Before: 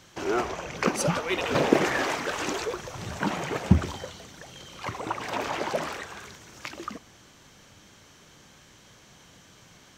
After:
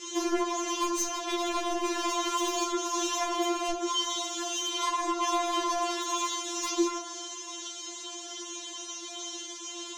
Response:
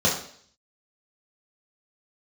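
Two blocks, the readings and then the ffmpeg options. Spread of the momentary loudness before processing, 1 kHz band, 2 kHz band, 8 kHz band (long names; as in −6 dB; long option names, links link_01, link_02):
18 LU, +2.5 dB, −6.5 dB, +8.5 dB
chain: -filter_complex "[0:a]highpass=frequency=130:width=0.5412,highpass=frequency=130:width=1.3066,equalizer=frequency=170:width_type=q:width=4:gain=-10,equalizer=frequency=1700:width_type=q:width=4:gain=-10,equalizer=frequency=3400:width_type=q:width=4:gain=8,equalizer=frequency=6600:width_type=q:width=4:gain=9,lowpass=frequency=9400:width=0.5412,lowpass=frequency=9400:width=1.3066,aeval=exprs='clip(val(0),-1,0.0473)':channel_layout=same,acompressor=threshold=-38dB:ratio=16,asplit=2[link_01][link_02];[1:a]atrim=start_sample=2205[link_03];[link_02][link_03]afir=irnorm=-1:irlink=0,volume=-16.5dB[link_04];[link_01][link_04]amix=inputs=2:normalize=0,adynamicequalizer=threshold=0.00112:dfrequency=1100:dqfactor=4:tfrequency=1100:tqfactor=4:attack=5:release=100:ratio=0.375:range=3:mode=boostabove:tftype=bell,aeval=exprs='0.0841*sin(PI/2*2.82*val(0)/0.0841)':channel_layout=same,afftfilt=real='re*4*eq(mod(b,16),0)':imag='im*4*eq(mod(b,16),0)':win_size=2048:overlap=0.75"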